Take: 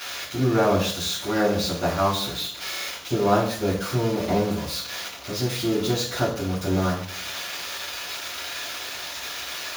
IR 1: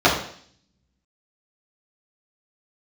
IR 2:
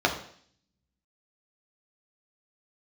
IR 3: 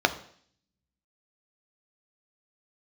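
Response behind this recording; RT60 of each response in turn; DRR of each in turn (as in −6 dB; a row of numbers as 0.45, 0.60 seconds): 1; 0.55, 0.55, 0.55 seconds; −9.0, 0.5, 7.5 decibels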